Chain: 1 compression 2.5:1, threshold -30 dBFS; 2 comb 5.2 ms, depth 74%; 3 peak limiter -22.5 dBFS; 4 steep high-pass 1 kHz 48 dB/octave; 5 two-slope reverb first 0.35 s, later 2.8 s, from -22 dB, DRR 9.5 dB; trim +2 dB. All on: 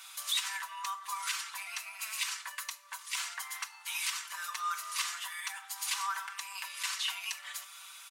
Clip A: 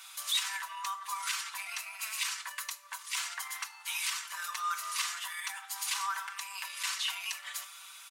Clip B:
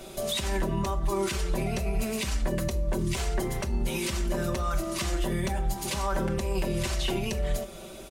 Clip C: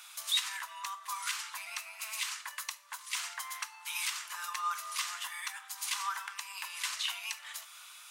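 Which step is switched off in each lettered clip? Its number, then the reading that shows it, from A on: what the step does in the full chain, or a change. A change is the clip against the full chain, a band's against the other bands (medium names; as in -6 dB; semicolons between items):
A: 1, mean gain reduction 6.0 dB; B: 4, 500 Hz band +37.5 dB; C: 2, 500 Hz band +4.0 dB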